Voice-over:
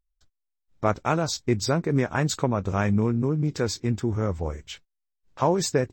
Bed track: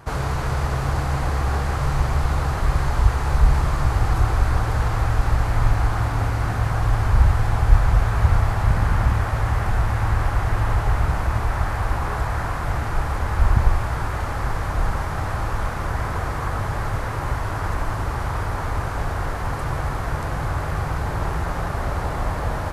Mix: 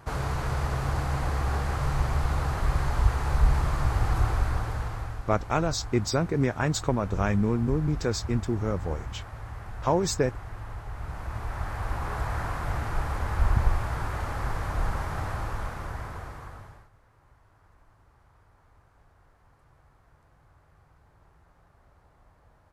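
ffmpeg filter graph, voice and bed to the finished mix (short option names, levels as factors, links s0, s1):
-filter_complex "[0:a]adelay=4450,volume=0.794[s0];[1:a]volume=2.11,afade=t=out:st=4.25:d=0.99:silence=0.237137,afade=t=in:st=10.91:d=1.41:silence=0.251189,afade=t=out:st=15.17:d=1.72:silence=0.0334965[s1];[s0][s1]amix=inputs=2:normalize=0"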